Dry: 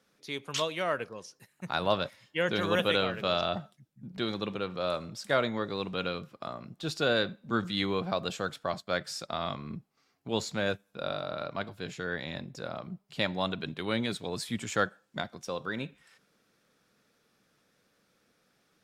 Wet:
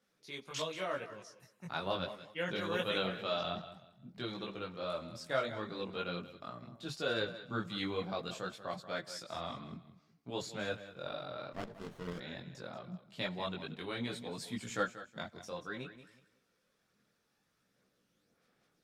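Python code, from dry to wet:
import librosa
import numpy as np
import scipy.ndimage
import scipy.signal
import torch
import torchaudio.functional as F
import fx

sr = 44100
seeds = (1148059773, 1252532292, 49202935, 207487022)

p1 = x + fx.echo_feedback(x, sr, ms=184, feedback_pct=26, wet_db=-13, dry=0)
p2 = fx.chorus_voices(p1, sr, voices=4, hz=0.61, base_ms=20, depth_ms=4.5, mix_pct=50)
p3 = fx.running_max(p2, sr, window=17, at=(11.52, 12.19), fade=0.02)
y = F.gain(torch.from_numpy(p3), -4.5).numpy()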